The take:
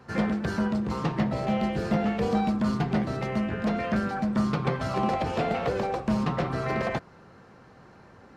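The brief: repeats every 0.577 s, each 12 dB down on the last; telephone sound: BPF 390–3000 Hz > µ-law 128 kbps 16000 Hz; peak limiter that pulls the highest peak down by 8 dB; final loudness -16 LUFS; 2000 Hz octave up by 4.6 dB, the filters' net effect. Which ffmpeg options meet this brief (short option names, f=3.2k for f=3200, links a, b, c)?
-af "equalizer=f=2k:t=o:g=6.5,alimiter=limit=-19dB:level=0:latency=1,highpass=390,lowpass=3k,aecho=1:1:577|1154|1731:0.251|0.0628|0.0157,volume=16dB" -ar 16000 -c:a pcm_mulaw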